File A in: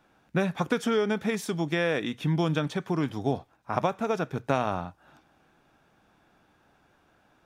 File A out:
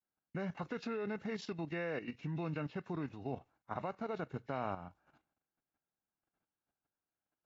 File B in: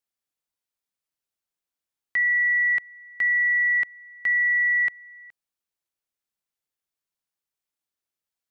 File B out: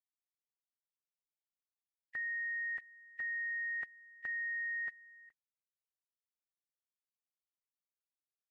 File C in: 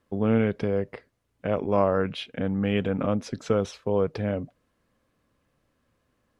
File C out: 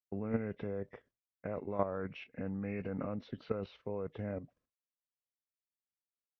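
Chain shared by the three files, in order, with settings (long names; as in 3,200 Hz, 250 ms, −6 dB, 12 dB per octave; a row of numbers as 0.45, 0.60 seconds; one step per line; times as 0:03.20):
hearing-aid frequency compression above 1,700 Hz 1.5 to 1
downward expander −52 dBFS
output level in coarse steps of 10 dB
level −8 dB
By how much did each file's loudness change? −12.5, −17.0, −13.5 LU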